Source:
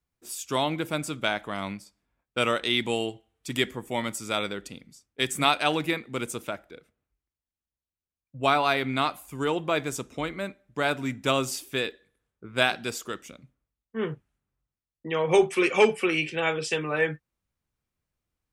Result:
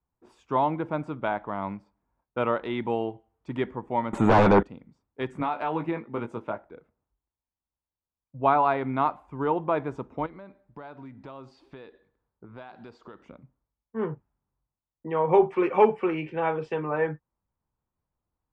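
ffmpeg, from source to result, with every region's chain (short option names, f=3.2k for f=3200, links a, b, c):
-filter_complex "[0:a]asettb=1/sr,asplit=3[a][b][c];[a]atrim=end=4.134[d];[b]atrim=start=4.13:end=4.63,asetpts=PTS-STARTPTS,afade=t=in:d=0.004:c=qsin,afade=t=out:st=0.496:d=0.004:c=qsin,asuperstop=centerf=5000:order=20:qfactor=2.3,aeval=exprs='0.237*sin(PI/2*7.94*val(0)/0.237)':c=same[e];[c]atrim=start=4.626[f];[d][e]acrossfade=d=0.004:c1=hsin:c2=qsin[g];[g][f]acrossfade=d=0.004:c1=qsin:c2=hsin,asettb=1/sr,asplit=3[h][i][j];[h]atrim=end=5.404[k];[i]atrim=start=5.4:end=6.65,asetpts=PTS-STARTPTS,afade=t=in:d=0.004:c=qsin,afade=t=out:st=1.246:d=0.004:c=qsin,highpass=88,acompressor=threshold=-23dB:ratio=6:attack=3.2:release=140:knee=1:detection=peak,asplit=2[l][m];[m]adelay=18,volume=-6dB[n];[l][n]amix=inputs=2:normalize=0,atrim=end_sample=55125[o];[j]atrim=start=6.646[p];[k][o]acrossfade=d=0.004:c1=hsin:c2=qsin[q];[q][p]acrossfade=d=0.004:c1=qsin:c2=hsin,asettb=1/sr,asplit=3[r][s][t];[r]atrim=end=10.264[u];[s]atrim=start=10.26:end=13.25,asetpts=PTS-STARTPTS,afade=t=in:d=0.004:c=qsin,afade=t=out:st=2.986:d=0.004:c=qsin,acompressor=threshold=-42dB:ratio=4:attack=3.2:release=140:knee=1:detection=peak,equalizer=f=4.4k:t=o:w=0.57:g=12.5[v];[t]atrim=start=13.246[w];[u][v]acrossfade=d=0.004:c1=hsin:c2=qsin[x];[x][w]acrossfade=d=0.004:c1=qsin:c2=hsin,lowpass=1.2k,equalizer=f=930:w=2.9:g=8.5"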